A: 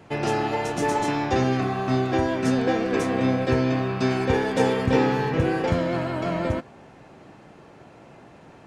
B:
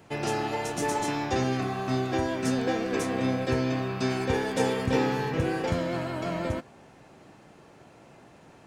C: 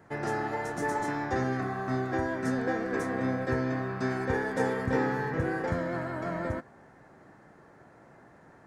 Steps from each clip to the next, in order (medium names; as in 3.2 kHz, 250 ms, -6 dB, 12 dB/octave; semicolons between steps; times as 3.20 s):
treble shelf 5.5 kHz +10 dB; trim -5 dB
resonant high shelf 2.2 kHz -6.5 dB, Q 3; trim -3 dB